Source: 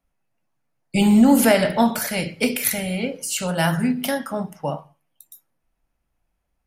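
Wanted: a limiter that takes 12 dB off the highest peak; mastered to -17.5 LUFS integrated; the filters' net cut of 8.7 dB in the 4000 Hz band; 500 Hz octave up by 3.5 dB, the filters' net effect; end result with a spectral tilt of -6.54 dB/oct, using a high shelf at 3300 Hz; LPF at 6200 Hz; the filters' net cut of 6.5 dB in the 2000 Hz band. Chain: LPF 6200 Hz; bell 500 Hz +5 dB; bell 2000 Hz -5 dB; high shelf 3300 Hz -7 dB; bell 4000 Hz -4.5 dB; gain +7 dB; limiter -7.5 dBFS

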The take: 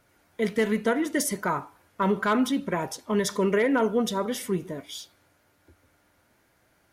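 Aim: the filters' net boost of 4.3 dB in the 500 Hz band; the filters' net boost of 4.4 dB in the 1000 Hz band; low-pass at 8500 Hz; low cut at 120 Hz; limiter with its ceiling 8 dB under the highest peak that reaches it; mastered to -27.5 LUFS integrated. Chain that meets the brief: HPF 120 Hz; LPF 8500 Hz; bell 500 Hz +4.5 dB; bell 1000 Hz +4 dB; gain -0.5 dB; limiter -17 dBFS

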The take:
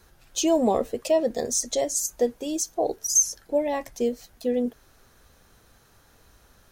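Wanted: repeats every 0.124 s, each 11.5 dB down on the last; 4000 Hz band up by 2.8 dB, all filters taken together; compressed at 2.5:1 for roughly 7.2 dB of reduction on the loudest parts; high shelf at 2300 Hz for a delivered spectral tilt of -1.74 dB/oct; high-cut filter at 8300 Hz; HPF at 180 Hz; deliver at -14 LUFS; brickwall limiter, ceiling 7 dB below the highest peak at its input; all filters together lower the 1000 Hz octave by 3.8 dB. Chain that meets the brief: HPF 180 Hz; LPF 8300 Hz; bell 1000 Hz -5.5 dB; high shelf 2300 Hz -4.5 dB; bell 4000 Hz +9 dB; compressor 2.5:1, threshold -29 dBFS; limiter -24.5 dBFS; feedback echo 0.124 s, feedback 27%, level -11.5 dB; gain +20 dB

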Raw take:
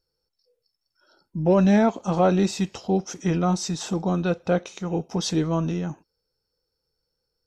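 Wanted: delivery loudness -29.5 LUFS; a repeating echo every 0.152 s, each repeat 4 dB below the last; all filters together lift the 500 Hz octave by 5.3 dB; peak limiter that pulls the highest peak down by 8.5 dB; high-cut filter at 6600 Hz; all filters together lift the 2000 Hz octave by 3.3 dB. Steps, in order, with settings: LPF 6600 Hz; bell 500 Hz +6.5 dB; bell 2000 Hz +4 dB; limiter -13.5 dBFS; feedback echo 0.152 s, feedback 63%, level -4 dB; gain -7 dB

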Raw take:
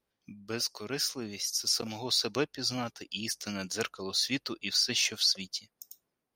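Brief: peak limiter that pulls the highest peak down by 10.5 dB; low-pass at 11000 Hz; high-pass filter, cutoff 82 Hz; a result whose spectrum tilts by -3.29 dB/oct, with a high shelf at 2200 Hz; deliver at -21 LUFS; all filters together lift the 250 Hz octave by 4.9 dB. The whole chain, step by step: HPF 82 Hz; LPF 11000 Hz; bell 250 Hz +6 dB; high shelf 2200 Hz -7 dB; gain +15 dB; limiter -10.5 dBFS

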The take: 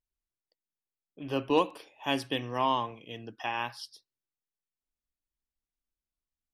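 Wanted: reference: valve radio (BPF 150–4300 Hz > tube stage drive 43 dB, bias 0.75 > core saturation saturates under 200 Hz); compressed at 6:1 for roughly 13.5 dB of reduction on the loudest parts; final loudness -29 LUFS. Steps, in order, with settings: compressor 6:1, threshold -34 dBFS; BPF 150–4300 Hz; tube stage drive 43 dB, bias 0.75; core saturation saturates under 200 Hz; gain +22 dB

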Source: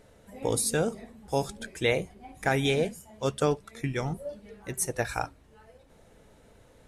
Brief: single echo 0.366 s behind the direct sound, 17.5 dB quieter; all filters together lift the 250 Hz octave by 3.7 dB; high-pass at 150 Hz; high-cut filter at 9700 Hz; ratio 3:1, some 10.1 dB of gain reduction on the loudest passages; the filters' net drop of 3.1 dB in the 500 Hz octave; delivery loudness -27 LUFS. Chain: HPF 150 Hz; LPF 9700 Hz; bell 250 Hz +7 dB; bell 500 Hz -5.5 dB; compressor 3:1, threshold -35 dBFS; echo 0.366 s -17.5 dB; gain +12 dB

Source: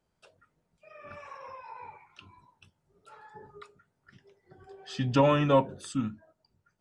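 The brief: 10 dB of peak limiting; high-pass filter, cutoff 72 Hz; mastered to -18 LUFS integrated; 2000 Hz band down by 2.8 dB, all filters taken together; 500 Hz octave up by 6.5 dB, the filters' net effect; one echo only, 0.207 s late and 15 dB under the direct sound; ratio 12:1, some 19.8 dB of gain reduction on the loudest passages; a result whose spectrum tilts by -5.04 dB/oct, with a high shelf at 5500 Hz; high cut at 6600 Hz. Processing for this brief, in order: HPF 72 Hz; LPF 6600 Hz; bell 500 Hz +7.5 dB; bell 2000 Hz -5.5 dB; high shelf 5500 Hz +8 dB; compressor 12:1, threshold -33 dBFS; limiter -32.5 dBFS; echo 0.207 s -15 dB; gain +26.5 dB

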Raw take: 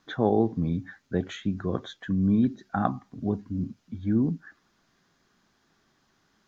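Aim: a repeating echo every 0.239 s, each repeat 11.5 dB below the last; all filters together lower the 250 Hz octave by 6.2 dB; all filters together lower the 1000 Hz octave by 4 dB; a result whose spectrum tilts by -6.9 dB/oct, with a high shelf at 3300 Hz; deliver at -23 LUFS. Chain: bell 250 Hz -8 dB; bell 1000 Hz -4.5 dB; high shelf 3300 Hz -7.5 dB; feedback echo 0.239 s, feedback 27%, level -11.5 dB; gain +9.5 dB

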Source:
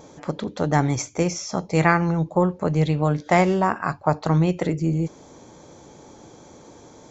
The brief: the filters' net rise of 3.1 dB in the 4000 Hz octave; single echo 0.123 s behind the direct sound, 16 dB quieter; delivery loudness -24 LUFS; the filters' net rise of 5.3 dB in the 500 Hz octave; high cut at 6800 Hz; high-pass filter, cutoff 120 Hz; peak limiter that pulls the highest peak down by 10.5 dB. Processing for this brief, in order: HPF 120 Hz; LPF 6800 Hz; bell 500 Hz +6.5 dB; bell 4000 Hz +5 dB; limiter -10.5 dBFS; echo 0.123 s -16 dB; gain -1 dB

